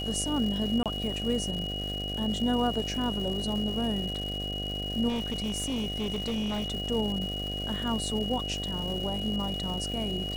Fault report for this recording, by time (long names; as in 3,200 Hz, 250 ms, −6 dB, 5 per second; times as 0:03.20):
mains buzz 50 Hz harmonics 15 −36 dBFS
surface crackle 400 per second −36 dBFS
whistle 2,900 Hz −34 dBFS
0:00.83–0:00.86: drop-out 27 ms
0:05.08–0:06.72: clipping −27 dBFS